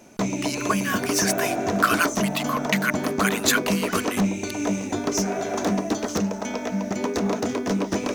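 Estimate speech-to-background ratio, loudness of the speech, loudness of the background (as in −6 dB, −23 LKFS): −0.5 dB, −26.0 LKFS, −25.5 LKFS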